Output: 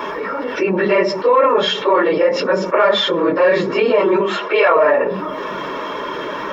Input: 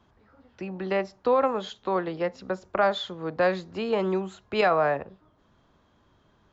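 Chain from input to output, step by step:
random phases in long frames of 50 ms
soft clipping −12.5 dBFS, distortion −22 dB
0:04.20–0:04.76: band-pass filter 420–4,600 Hz
convolution reverb RT60 0.40 s, pre-delay 3 ms, DRR 16 dB
envelope flattener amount 70%
level −1 dB

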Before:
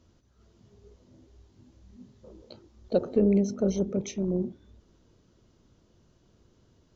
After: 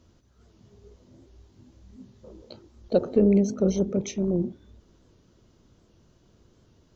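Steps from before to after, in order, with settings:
wow of a warped record 78 rpm, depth 100 cents
level +3 dB

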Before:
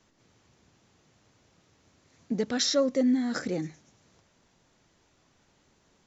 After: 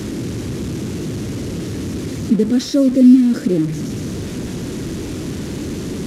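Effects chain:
linear delta modulator 64 kbit/s, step −29 dBFS
high-pass filter 43 Hz
low shelf with overshoot 510 Hz +13.5 dB, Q 1.5

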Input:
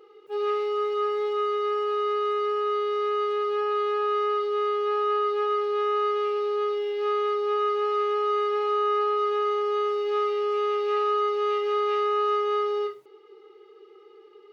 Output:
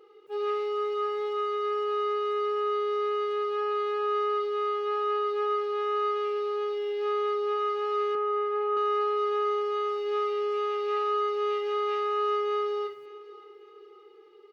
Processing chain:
0:08.15–0:08.77: band-pass filter 210–2,000 Hz
repeating echo 570 ms, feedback 44%, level −18 dB
level −3 dB

